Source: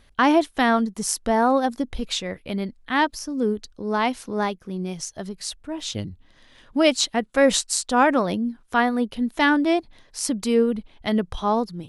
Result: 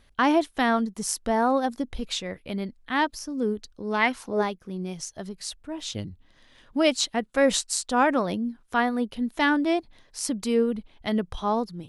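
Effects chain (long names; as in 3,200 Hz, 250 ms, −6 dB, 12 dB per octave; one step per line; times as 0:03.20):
0:03.90–0:04.41: parametric band 3,400 Hz → 460 Hz +14 dB 0.54 octaves
level −3.5 dB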